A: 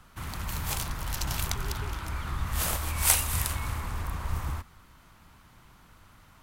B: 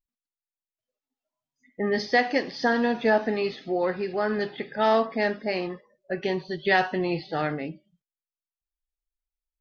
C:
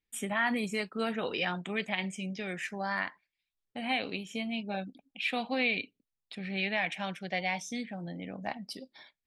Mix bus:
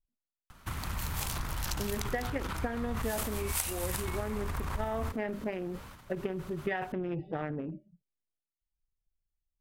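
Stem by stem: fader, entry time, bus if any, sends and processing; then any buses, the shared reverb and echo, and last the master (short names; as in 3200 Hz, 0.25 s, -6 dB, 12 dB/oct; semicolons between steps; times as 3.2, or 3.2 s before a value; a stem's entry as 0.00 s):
-2.0 dB, 0.50 s, bus A, no send, dry
-5.5 dB, 0.00 s, bus A, no send, Wiener smoothing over 41 samples; polynomial smoothing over 25 samples; low shelf 81 Hz +8.5 dB
off
bus A: 0.0 dB, transient shaper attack +6 dB, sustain +10 dB; compressor 6:1, threshold -30 dBFS, peak gain reduction 15 dB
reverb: off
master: dry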